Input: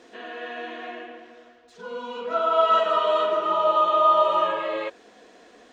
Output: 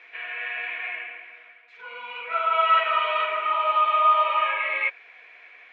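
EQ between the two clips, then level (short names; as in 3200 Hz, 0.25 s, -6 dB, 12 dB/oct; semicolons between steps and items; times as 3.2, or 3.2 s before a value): HPF 1000 Hz 12 dB/oct; synth low-pass 2300 Hz, resonance Q 14; -1.0 dB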